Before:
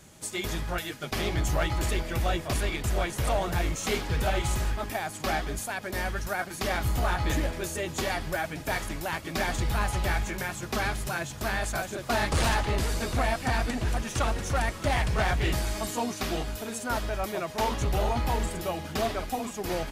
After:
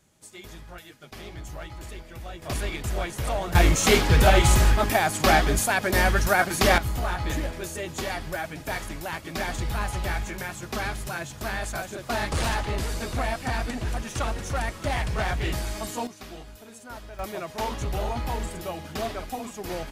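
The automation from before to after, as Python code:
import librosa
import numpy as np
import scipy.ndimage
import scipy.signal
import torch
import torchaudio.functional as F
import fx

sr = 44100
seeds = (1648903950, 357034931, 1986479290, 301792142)

y = fx.gain(x, sr, db=fx.steps((0.0, -11.5), (2.42, -1.0), (3.55, 10.0), (6.78, -1.0), (16.07, -11.0), (17.19, -2.0)))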